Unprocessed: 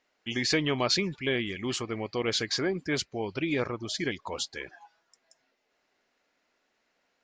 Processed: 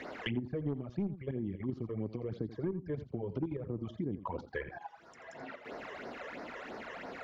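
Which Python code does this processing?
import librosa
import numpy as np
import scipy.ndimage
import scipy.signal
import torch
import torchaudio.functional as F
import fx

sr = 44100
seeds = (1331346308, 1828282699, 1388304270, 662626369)

p1 = fx.highpass(x, sr, hz=80.0, slope=6)
p2 = fx.env_lowpass_down(p1, sr, base_hz=410.0, full_db=-29.5)
p3 = fx.dynamic_eq(p2, sr, hz=490.0, q=0.79, threshold_db=-42.0, ratio=4.0, max_db=-4)
p4 = fx.level_steps(p3, sr, step_db=11)
p5 = fx.phaser_stages(p4, sr, stages=12, low_hz=230.0, high_hz=2900.0, hz=3.0, feedback_pct=30)
p6 = 10.0 ** (-30.0 / 20.0) * np.tanh(p5 / 10.0 ** (-30.0 / 20.0))
p7 = p6 + fx.echo_single(p6, sr, ms=84, db=-14.5, dry=0)
p8 = fx.band_squash(p7, sr, depth_pct=100)
y = F.gain(torch.from_numpy(p8), 7.0).numpy()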